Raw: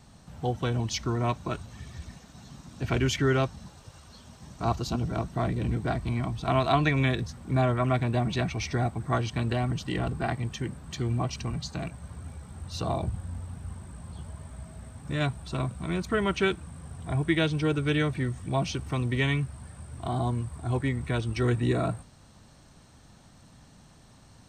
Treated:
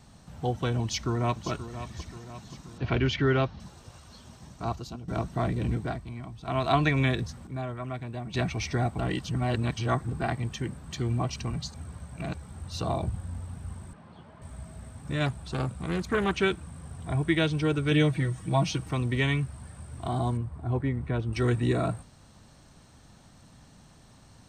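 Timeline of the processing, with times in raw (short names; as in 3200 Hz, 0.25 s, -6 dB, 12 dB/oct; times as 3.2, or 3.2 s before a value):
0.83–1.48 echo throw 0.53 s, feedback 55%, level -11.5 dB
2.78–3.6 LPF 4600 Hz 24 dB/oct
4.34–5.08 fade out, to -16.5 dB
5.73–6.74 dip -10 dB, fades 0.33 s
7.47–8.34 gain -10 dB
8.98–10.09 reverse
11.74–12.34 reverse
13.93–14.42 BPF 210–3000 Hz
15.26–16.4 Doppler distortion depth 0.35 ms
17.91–18.89 comb 6.3 ms, depth 68%
20.37–21.33 LPF 1100 Hz 6 dB/oct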